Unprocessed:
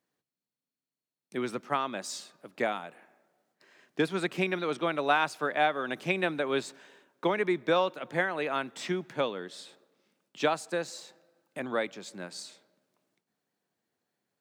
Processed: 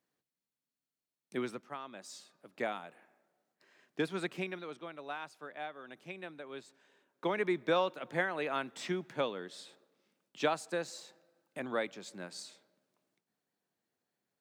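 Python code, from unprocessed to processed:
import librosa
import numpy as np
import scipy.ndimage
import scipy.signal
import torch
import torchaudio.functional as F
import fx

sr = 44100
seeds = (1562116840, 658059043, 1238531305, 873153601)

y = fx.gain(x, sr, db=fx.line((1.38, -2.5), (1.75, -14.5), (2.66, -6.0), (4.25, -6.0), (4.89, -16.5), (6.68, -16.5), (7.38, -4.0)))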